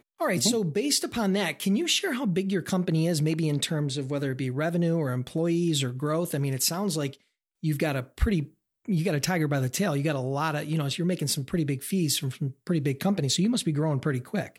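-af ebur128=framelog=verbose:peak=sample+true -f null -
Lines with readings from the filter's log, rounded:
Integrated loudness:
  I:         -26.9 LUFS
  Threshold: -37.0 LUFS
Loudness range:
  LRA:         2.4 LU
  Threshold: -47.3 LUFS
  LRA low:   -28.4 LUFS
  LRA high:  -25.9 LUFS
Sample peak:
  Peak:      -11.3 dBFS
True peak:
  Peak:      -11.0 dBFS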